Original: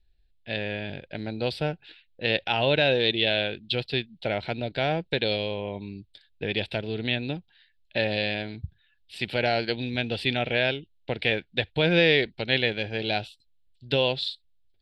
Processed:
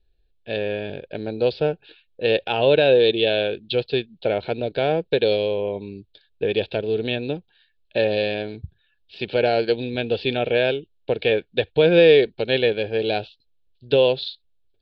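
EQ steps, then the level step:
Butterworth band-reject 2,000 Hz, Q 6.5
Butterworth low-pass 4,800 Hz 36 dB per octave
parametric band 450 Hz +11.5 dB 0.84 octaves
0.0 dB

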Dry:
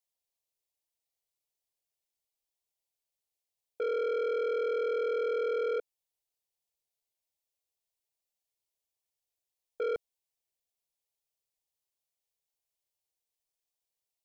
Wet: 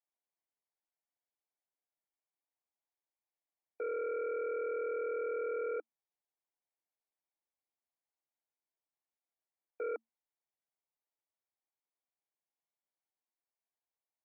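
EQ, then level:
Chebyshev high-pass with heavy ripple 220 Hz, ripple 6 dB
linear-phase brick-wall low-pass 2,400 Hz
notch filter 1,300 Hz, Q 17
0.0 dB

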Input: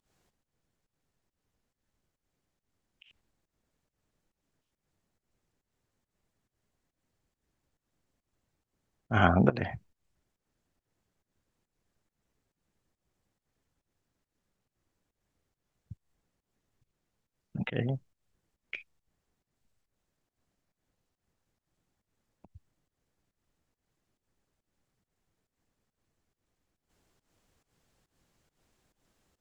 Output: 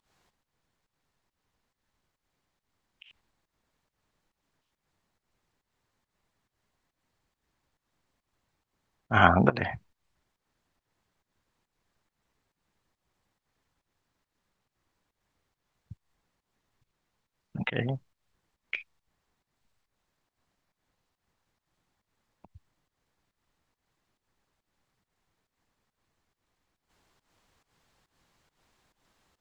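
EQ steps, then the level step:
octave-band graphic EQ 1,000/2,000/4,000 Hz +7/+4/+5 dB
0.0 dB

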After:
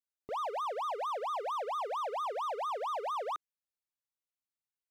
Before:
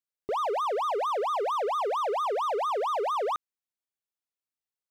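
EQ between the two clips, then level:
parametric band 390 Hz −10.5 dB 0.3 octaves
−6.5 dB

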